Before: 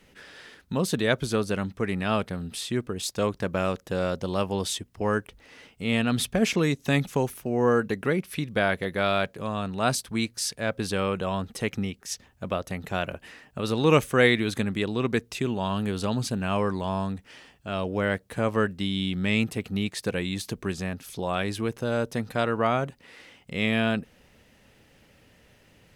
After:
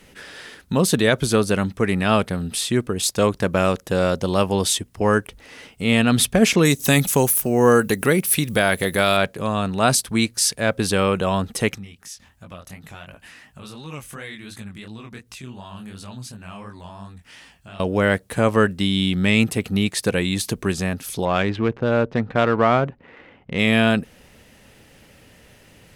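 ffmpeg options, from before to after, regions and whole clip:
-filter_complex "[0:a]asettb=1/sr,asplit=3[a][b][c];[a]atrim=end=6.654[d];[b]atrim=start=6.65:end=9.17,asetpts=PTS-STARTPTS,afade=t=in:d=0.004:c=qsin,afade=t=out:st=2.516:d=0.004:c=qsin,aemphasis=mode=production:type=50fm,acompressor=mode=upward:threshold=-27dB:ratio=2.5:attack=3.2:release=140:knee=2.83:detection=peak[e];[c]atrim=start=9.166[f];[d][e]acrossfade=d=0.004:c1=hsin:c2=qsin[g];[g][f]acrossfade=d=0.004:c1=qsin:c2=hsin,asettb=1/sr,asplit=3[h][i][j];[h]atrim=end=11.754[k];[i]atrim=start=11.75:end=17.8,asetpts=PTS-STARTPTS,afade=t=in:d=0.004:c=qsin,afade=t=out:st=6.046:d=0.004:c=qsin,equalizer=f=430:w=1.2:g=-9,acompressor=threshold=-45dB:ratio=2.5:attack=3.2:release=140:knee=1:detection=peak,flanger=delay=18:depth=6.4:speed=2.8[l];[j]atrim=start=17.796[m];[k][l]acrossfade=d=0.004:c1=hsin:c2=qsin[n];[n][m]acrossfade=d=0.004:c1=qsin:c2=hsin,asettb=1/sr,asplit=3[o][p][q];[o]atrim=end=21.254[r];[p]atrim=start=21.25:end=23.59,asetpts=PTS-STARTPTS,afade=t=in:d=0.004:c=qsin,afade=t=out:st=2.336:d=0.004:c=qsin,adynamicsmooth=sensitivity=7.5:basefreq=1.5k,lowpass=3.6k[s];[q]atrim=start=23.586[t];[r][s]acrossfade=d=0.004:c1=hsin:c2=qsin[u];[u][t]acrossfade=d=0.004:c1=qsin:c2=hsin,equalizer=f=10k:t=o:w=0.95:g=5,alimiter=level_in=10.5dB:limit=-1dB:release=50:level=0:latency=1,volume=-3dB"

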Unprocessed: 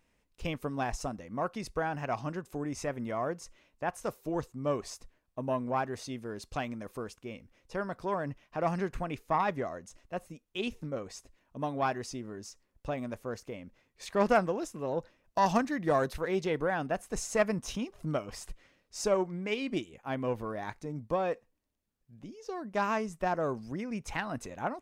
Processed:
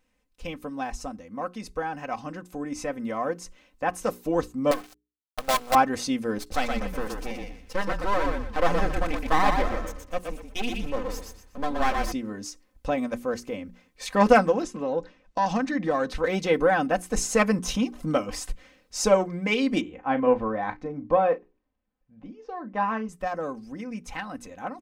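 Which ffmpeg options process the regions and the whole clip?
-filter_complex "[0:a]asettb=1/sr,asplit=3[a][b][c];[a]atrim=end=4.714[d];[b]atrim=start=4.71:end=5.75,asetpts=PTS-STARTPTS,afade=t=in:d=0.004:c=qsin,afade=t=out:st=1.036:d=0.004:c=qsin,acontrast=49,asplit=3[e][f][g];[e]bandpass=f=730:t=q:w=8,volume=0dB[h];[f]bandpass=f=1.09k:t=q:w=8,volume=-6dB[i];[g]bandpass=f=2.44k:t=q:w=8,volume=-9dB[j];[h][i][j]amix=inputs=3:normalize=0,acrusher=bits=6:dc=4:mix=0:aa=0.000001[k];[c]atrim=start=5.746[l];[d][k]acrossfade=d=0.004:c1=hsin:c2=qsin[m];[m][l]acrossfade=d=0.004:c1=qsin:c2=hsin,asettb=1/sr,asplit=3[n][o][p];[n]atrim=end=6.384[q];[o]atrim=start=6.38:end=12.12,asetpts=PTS-STARTPTS,afade=t=in:d=0.004:c=qsin,afade=t=out:st=5.736:d=0.004:c=qsin,aeval=exprs='max(val(0),0)':c=same,asplit=5[r][s][t][u][v];[s]adelay=121,afreqshift=-33,volume=-4dB[w];[t]adelay=242,afreqshift=-66,volume=-14.5dB[x];[u]adelay=363,afreqshift=-99,volume=-24.9dB[y];[v]adelay=484,afreqshift=-132,volume=-35.4dB[z];[r][w][x][y][z]amix=inputs=5:normalize=0,atrim=end_sample=253134[aa];[p]atrim=start=12.116[ab];[q][aa]acrossfade=d=0.004:c1=hsin:c2=qsin[ac];[ac][ab]acrossfade=d=0.004:c1=qsin:c2=hsin,asettb=1/sr,asplit=3[ad][ae][af];[ad]atrim=end=14.624[ag];[ae]atrim=start=14.62:end=16.24,asetpts=PTS-STARTPTS,afade=t=in:d=0.004:c=qsin,afade=t=out:st=1.616:d=0.004:c=qsin,lowpass=6.1k,acompressor=threshold=-34dB:ratio=2:attack=3.2:release=140:knee=1:detection=peak[ah];[af]atrim=start=16.236[ai];[ag][ah]acrossfade=d=0.004:c1=hsin:c2=qsin[aj];[aj][ai]acrossfade=d=0.004:c1=qsin:c2=hsin,asettb=1/sr,asplit=3[ak][al][am];[ak]atrim=end=19.814[an];[al]atrim=start=19.81:end=23.09,asetpts=PTS-STARTPTS,afade=t=in:d=0.004:c=qsin,afade=t=out:st=3.276:d=0.004:c=qsin,lowpass=2.4k,equalizer=f=820:t=o:w=1:g=3,asplit=2[ao][ap];[ap]adelay=36,volume=-12dB[aq];[ao][aq]amix=inputs=2:normalize=0,atrim=end_sample=144648[ar];[am]atrim=start=23.086[as];[an][ar]acrossfade=d=0.004:c1=hsin:c2=qsin[at];[at][as]acrossfade=d=0.004:c1=qsin:c2=hsin,bandreject=f=60:t=h:w=6,bandreject=f=120:t=h:w=6,bandreject=f=180:t=h:w=6,bandreject=f=240:t=h:w=6,bandreject=f=300:t=h:w=6,bandreject=f=360:t=h:w=6,bandreject=f=420:t=h:w=6,aecho=1:1:3.9:0.67,dynaudnorm=f=270:g=31:m=13dB,volume=-1.5dB"

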